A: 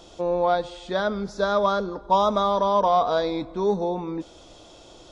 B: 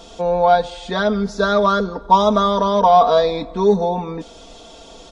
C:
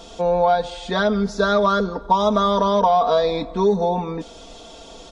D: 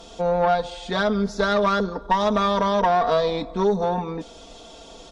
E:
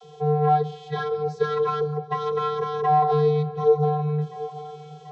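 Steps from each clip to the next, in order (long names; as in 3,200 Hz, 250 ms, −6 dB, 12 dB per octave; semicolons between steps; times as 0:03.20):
comb filter 4.4 ms, depth 70%; level +5.5 dB
downward compressor, threshold −13 dBFS, peak gain reduction 7 dB
tube saturation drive 11 dB, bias 0.55
channel vocoder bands 32, square 150 Hz; delay with a low-pass on its return 736 ms, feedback 60%, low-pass 3,300 Hz, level −16 dB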